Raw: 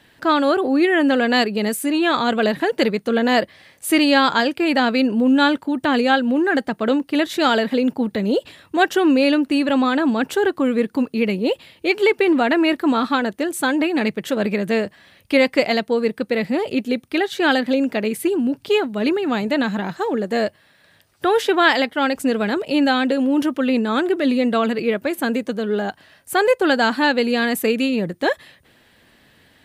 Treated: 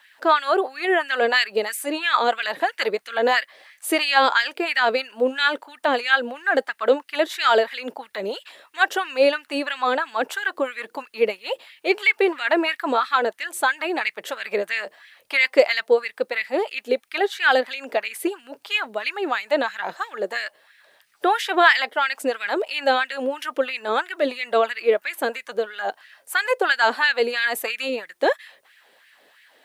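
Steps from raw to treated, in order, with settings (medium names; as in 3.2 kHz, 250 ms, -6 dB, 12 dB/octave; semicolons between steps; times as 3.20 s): LFO high-pass sine 3 Hz 450–2100 Hz; word length cut 12-bit, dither triangular; trim -3 dB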